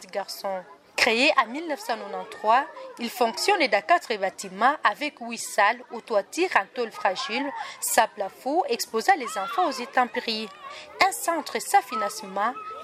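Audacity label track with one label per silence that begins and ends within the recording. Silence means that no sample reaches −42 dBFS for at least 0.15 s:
0.740000	0.970000	silence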